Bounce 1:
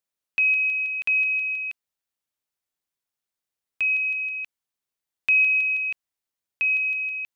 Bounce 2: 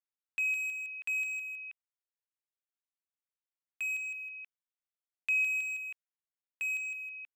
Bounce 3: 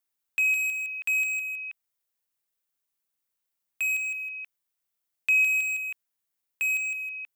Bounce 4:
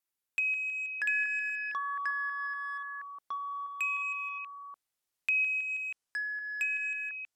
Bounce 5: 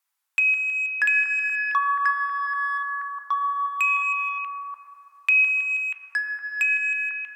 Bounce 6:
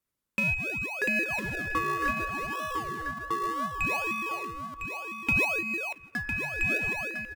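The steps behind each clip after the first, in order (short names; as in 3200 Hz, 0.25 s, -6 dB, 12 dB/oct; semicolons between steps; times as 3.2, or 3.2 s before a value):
Wiener smoothing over 9 samples; HPF 1400 Hz 6 dB/oct; gain -8.5 dB
high shelf 10000 Hz +10.5 dB; gain +7 dB
treble ducked by the level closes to 2400 Hz, closed at -23.5 dBFS; echoes that change speed 0.447 s, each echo -7 st, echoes 2; gain -3.5 dB
resonant high-pass 980 Hz, resonance Q 1.7; on a send at -4.5 dB: reverb RT60 3.8 s, pre-delay 6 ms; on the sum: gain +8 dB
in parallel at -5.5 dB: decimation with a swept rate 38×, swing 100% 0.66 Hz; on the sum: echo 1.005 s -7.5 dB; gain -8 dB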